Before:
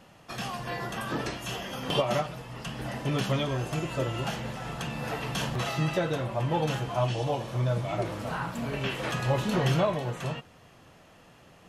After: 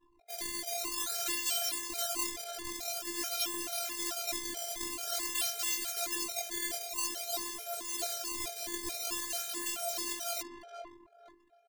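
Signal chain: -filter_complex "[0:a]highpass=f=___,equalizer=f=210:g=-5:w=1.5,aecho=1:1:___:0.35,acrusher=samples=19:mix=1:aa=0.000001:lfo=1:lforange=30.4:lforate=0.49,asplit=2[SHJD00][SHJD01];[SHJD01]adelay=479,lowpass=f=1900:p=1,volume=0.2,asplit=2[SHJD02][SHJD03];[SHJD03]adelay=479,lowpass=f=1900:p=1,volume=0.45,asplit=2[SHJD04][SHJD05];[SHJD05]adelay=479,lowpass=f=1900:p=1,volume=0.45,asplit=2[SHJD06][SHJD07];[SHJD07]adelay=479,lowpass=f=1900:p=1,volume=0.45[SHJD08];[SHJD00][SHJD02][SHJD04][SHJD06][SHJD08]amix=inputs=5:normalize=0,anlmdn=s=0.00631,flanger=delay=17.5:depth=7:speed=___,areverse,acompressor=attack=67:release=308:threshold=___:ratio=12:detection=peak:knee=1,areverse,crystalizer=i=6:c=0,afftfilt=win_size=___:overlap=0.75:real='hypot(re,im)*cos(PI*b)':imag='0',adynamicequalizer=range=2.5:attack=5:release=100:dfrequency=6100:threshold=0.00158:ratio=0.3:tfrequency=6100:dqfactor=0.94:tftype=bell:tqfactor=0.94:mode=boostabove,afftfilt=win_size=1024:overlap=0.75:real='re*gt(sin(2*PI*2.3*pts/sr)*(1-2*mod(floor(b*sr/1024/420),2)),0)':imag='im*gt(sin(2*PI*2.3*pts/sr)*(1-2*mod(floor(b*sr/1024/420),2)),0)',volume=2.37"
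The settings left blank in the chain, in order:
160, 4.3, 0.67, 0.00562, 512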